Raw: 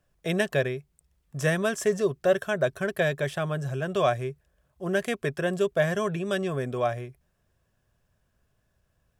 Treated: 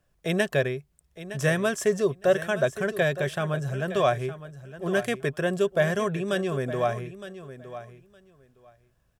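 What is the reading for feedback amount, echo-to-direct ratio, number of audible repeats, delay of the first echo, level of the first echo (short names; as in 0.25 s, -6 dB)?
16%, -13.5 dB, 2, 0.913 s, -13.5 dB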